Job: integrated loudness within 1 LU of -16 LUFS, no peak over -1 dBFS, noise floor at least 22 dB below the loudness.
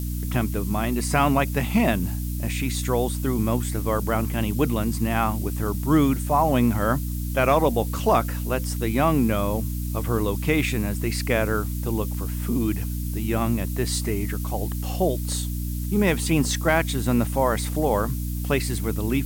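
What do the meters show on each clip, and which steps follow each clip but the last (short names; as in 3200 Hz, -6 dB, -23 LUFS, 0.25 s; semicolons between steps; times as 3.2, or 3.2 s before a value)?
hum 60 Hz; harmonics up to 300 Hz; hum level -25 dBFS; noise floor -28 dBFS; noise floor target -46 dBFS; loudness -24.0 LUFS; peak -7.5 dBFS; loudness target -16.0 LUFS
-> notches 60/120/180/240/300 Hz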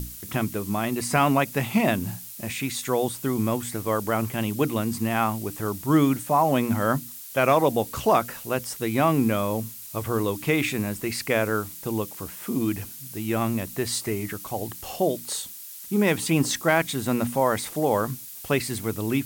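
hum none; noise floor -41 dBFS; noise floor target -47 dBFS
-> noise print and reduce 6 dB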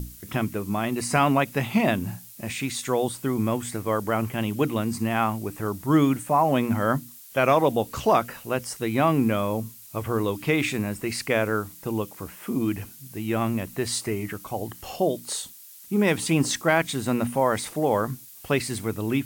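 noise floor -46 dBFS; noise floor target -48 dBFS
-> noise print and reduce 6 dB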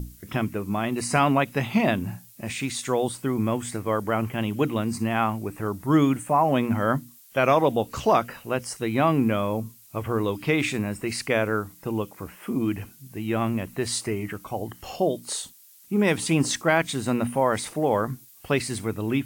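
noise floor -52 dBFS; loudness -25.5 LUFS; peak -8.0 dBFS; loudness target -16.0 LUFS
-> gain +9.5 dB; limiter -1 dBFS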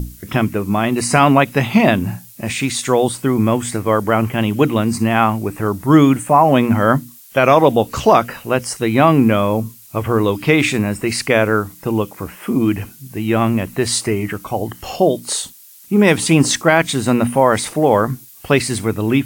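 loudness -16.0 LUFS; peak -1.0 dBFS; noise floor -42 dBFS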